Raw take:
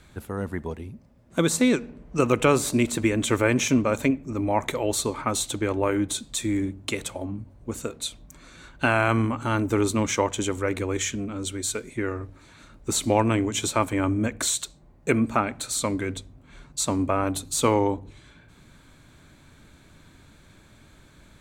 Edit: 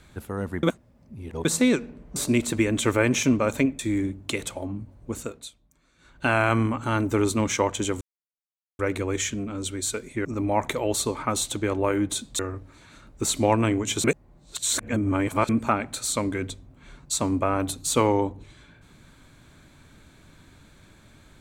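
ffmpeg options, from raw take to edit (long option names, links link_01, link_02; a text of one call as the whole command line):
ffmpeg -i in.wav -filter_complex "[0:a]asplit=12[link_01][link_02][link_03][link_04][link_05][link_06][link_07][link_08][link_09][link_10][link_11][link_12];[link_01]atrim=end=0.632[link_13];[link_02]atrim=start=0.628:end=1.452,asetpts=PTS-STARTPTS,areverse[link_14];[link_03]atrim=start=1.448:end=2.162[link_15];[link_04]atrim=start=2.608:end=4.242[link_16];[link_05]atrim=start=6.378:end=8.13,asetpts=PTS-STARTPTS,afade=type=out:start_time=1.382:duration=0.37:silence=0.149624[link_17];[link_06]atrim=start=8.13:end=8.56,asetpts=PTS-STARTPTS,volume=-16.5dB[link_18];[link_07]atrim=start=8.56:end=10.6,asetpts=PTS-STARTPTS,afade=type=in:duration=0.37:silence=0.149624,afade=type=out:start_time=2.036:duration=0.004:curve=hsin,apad=pad_dur=0.78[link_19];[link_08]atrim=start=10.6:end=12.062,asetpts=PTS-STARTPTS,afade=type=in:duration=0.004:curve=hsin[link_20];[link_09]atrim=start=4.238:end=6.382[link_21];[link_10]atrim=start=12.058:end=13.712[link_22];[link_11]atrim=start=13.708:end=15.162,asetpts=PTS-STARTPTS,areverse[link_23];[link_12]atrim=start=15.158[link_24];[link_13][link_14]acrossfade=duration=0.004:curve1=hsin:curve2=hsin[link_25];[link_25][link_15]acrossfade=duration=0.004:curve1=hsin:curve2=hsin[link_26];[link_26][link_16]acrossfade=duration=0.004:curve1=hsin:curve2=hsin[link_27];[link_17][link_18][link_19][link_20]concat=n=4:v=0:a=1[link_28];[link_27][link_28]acrossfade=duration=0.004:curve1=hsin:curve2=hsin[link_29];[link_29][link_21]acrossfade=duration=0.004:curve1=hsin:curve2=hsin[link_30];[link_30][link_22]acrossfade=duration=0.004:curve1=hsin:curve2=hsin[link_31];[link_31][link_23]acrossfade=duration=0.004:curve1=hsin:curve2=hsin[link_32];[link_32][link_24]acrossfade=duration=0.004:curve1=hsin:curve2=hsin" out.wav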